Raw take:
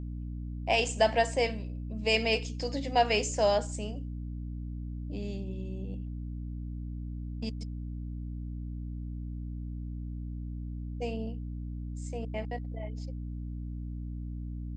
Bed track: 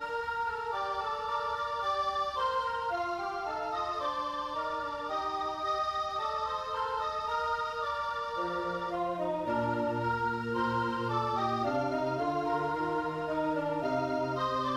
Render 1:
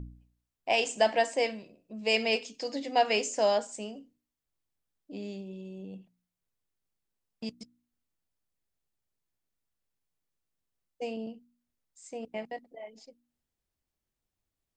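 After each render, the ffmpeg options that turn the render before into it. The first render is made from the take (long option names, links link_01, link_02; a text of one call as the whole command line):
ffmpeg -i in.wav -af "bandreject=frequency=60:width_type=h:width=4,bandreject=frequency=120:width_type=h:width=4,bandreject=frequency=180:width_type=h:width=4,bandreject=frequency=240:width_type=h:width=4,bandreject=frequency=300:width_type=h:width=4" out.wav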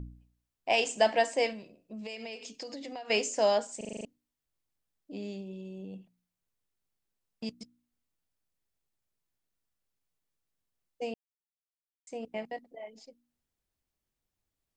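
ffmpeg -i in.wav -filter_complex "[0:a]asettb=1/sr,asplit=3[link_01][link_02][link_03];[link_01]atrim=end=1.524[link_04];[link_02]atrim=start=1.52:end=3.1,asetpts=PTS-STARTPTS,afade=type=in:duration=0.004:curve=qsin,afade=type=out:start_time=1.576:duration=0.004:curve=qsin,acompressor=threshold=-37dB:ratio=16:attack=3.2:release=140:knee=1:detection=peak[link_05];[link_03]atrim=start=3.096[link_06];[link_04][link_05]acrossfade=duration=0.004:curve1=hsin:curve2=qsin[link_07];[link_07][link_06]acrossfade=duration=0.004:curve1=qsin:curve2=hsin,asplit=10[link_08][link_09][link_10][link_11][link_12][link_13][link_14][link_15][link_16][link_17];[link_08]atrim=end=3.812[link_18];[link_09]atrim=start=3.768:end=3.812[link_19];[link_10]atrim=start=3.768:end=3.812[link_20];[link_11]atrim=start=3.768:end=3.812[link_21];[link_12]atrim=start=3.768:end=3.812[link_22];[link_13]atrim=start=3.768:end=3.812[link_23];[link_14]atrim=start=3.768:end=3.812[link_24];[link_15]atrim=start=4.048:end=11.14,asetpts=PTS-STARTPTS,afade=type=out:start_time=7.088:duration=0.004:curve=hsin[link_25];[link_16]atrim=start=11.14:end=12.07,asetpts=PTS-STARTPTS,volume=0[link_26];[link_17]atrim=start=12.07,asetpts=PTS-STARTPTS,afade=type=in:duration=0.004:curve=hsin[link_27];[link_18][link_19]acrossfade=duration=0.004:curve1=hsin:curve2=hsin[link_28];[link_28][link_20]acrossfade=duration=0.004:curve1=hsin:curve2=hsin[link_29];[link_29][link_21]acrossfade=duration=0.004:curve1=hsin:curve2=hsin[link_30];[link_30][link_22]acrossfade=duration=0.004:curve1=hsin:curve2=hsin[link_31];[link_31][link_23]acrossfade=duration=0.004:curve1=hsin:curve2=hsin[link_32];[link_32][link_24]acrossfade=duration=0.004:curve1=hsin:curve2=hsin[link_33];[link_25][link_26][link_27]concat=n=3:v=0:a=1[link_34];[link_33][link_34]acrossfade=duration=0.004:curve1=hsin:curve2=hsin" out.wav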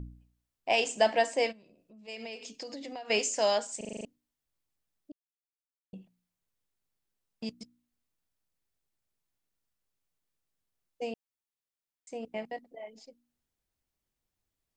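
ffmpeg -i in.wav -filter_complex "[0:a]asplit=3[link_01][link_02][link_03];[link_01]afade=type=out:start_time=1.51:duration=0.02[link_04];[link_02]acompressor=threshold=-59dB:ratio=2.5:attack=3.2:release=140:knee=1:detection=peak,afade=type=in:start_time=1.51:duration=0.02,afade=type=out:start_time=2.07:duration=0.02[link_05];[link_03]afade=type=in:start_time=2.07:duration=0.02[link_06];[link_04][link_05][link_06]amix=inputs=3:normalize=0,asettb=1/sr,asplit=3[link_07][link_08][link_09];[link_07]atrim=end=3.194[link_10];[link_08]atrim=start=3.19:end=3.8,asetpts=PTS-STARTPTS,afade=type=in:duration=0.004:curve=qsin,afade=type=out:start_time=0.606:duration=0.004:curve=qsin,tiltshelf=frequency=970:gain=-4[link_11];[link_09]atrim=start=3.796[link_12];[link_10][link_11]acrossfade=duration=0.004:curve1=hsin:curve2=qsin[link_13];[link_13][link_12]acrossfade=duration=0.004:curve1=qsin:curve2=hsin,asplit=3[link_14][link_15][link_16];[link_14]atrim=end=5.12,asetpts=PTS-STARTPTS,afade=type=out:start_time=5.116:duration=0.004:curve=hsin[link_17];[link_15]atrim=start=5.12:end=5.93,asetpts=PTS-STARTPTS,volume=0[link_18];[link_16]atrim=start=5.93,asetpts=PTS-STARTPTS,afade=type=in:duration=0.004:curve=hsin[link_19];[link_17][link_18][link_19]concat=n=3:v=0:a=1" out.wav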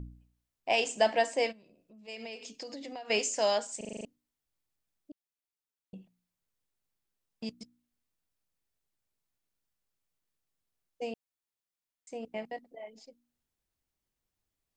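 ffmpeg -i in.wav -af "volume=-1dB" out.wav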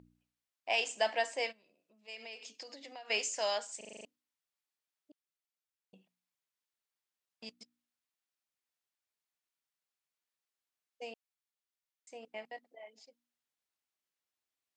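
ffmpeg -i in.wav -af "highpass=frequency=1200:poles=1,highshelf=frequency=6700:gain=-7.5" out.wav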